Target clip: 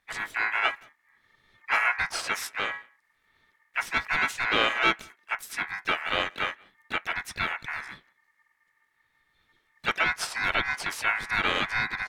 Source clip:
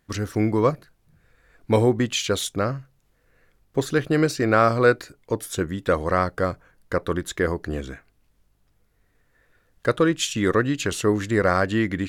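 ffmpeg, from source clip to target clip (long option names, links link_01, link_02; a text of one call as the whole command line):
ffmpeg -i in.wav -filter_complex "[0:a]aeval=exprs='val(0)*sin(2*PI*1800*n/s)':channel_layout=same,asplit=2[link_01][link_02];[link_02]adelay=180,highpass=300,lowpass=3400,asoftclip=type=hard:threshold=-15dB,volume=-27dB[link_03];[link_01][link_03]amix=inputs=2:normalize=0,asplit=4[link_04][link_05][link_06][link_07];[link_05]asetrate=22050,aresample=44100,atempo=2,volume=-12dB[link_08];[link_06]asetrate=29433,aresample=44100,atempo=1.49831,volume=-9dB[link_09];[link_07]asetrate=52444,aresample=44100,atempo=0.840896,volume=-7dB[link_10];[link_04][link_08][link_09][link_10]amix=inputs=4:normalize=0,volume=-5dB" out.wav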